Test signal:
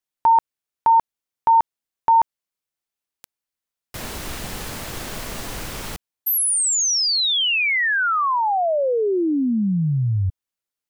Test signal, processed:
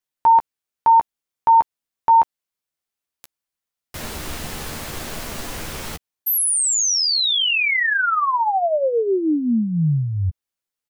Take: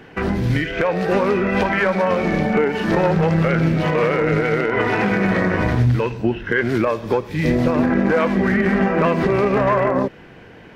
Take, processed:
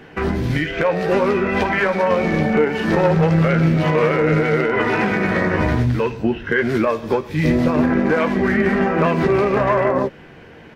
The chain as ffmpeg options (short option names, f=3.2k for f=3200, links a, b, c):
-filter_complex "[0:a]asplit=2[a][b];[b]adelay=13,volume=-8dB[c];[a][c]amix=inputs=2:normalize=0"